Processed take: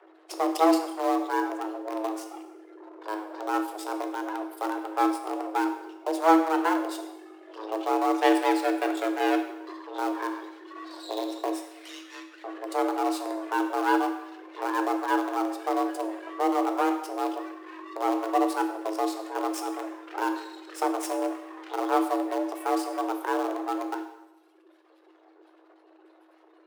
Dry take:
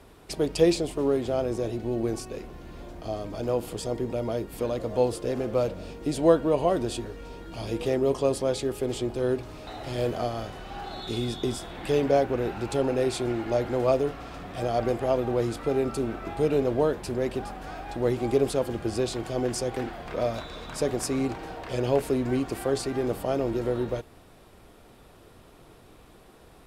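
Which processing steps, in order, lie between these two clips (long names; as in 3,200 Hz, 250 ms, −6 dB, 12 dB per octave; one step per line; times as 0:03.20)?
0:08.21–0:09.74: each half-wave held at its own peak
reverb reduction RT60 1.8 s
0:11.56–0:12.44: inverse Chebyshev high-pass filter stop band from 440 Hz, stop band 50 dB
gate on every frequency bin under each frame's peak −20 dB strong
half-wave rectification
in parallel at −11.5 dB: bit reduction 4 bits
on the sum: frequency shifter +320 Hz
convolution reverb RT60 0.90 s, pre-delay 10 ms, DRR 5.5 dB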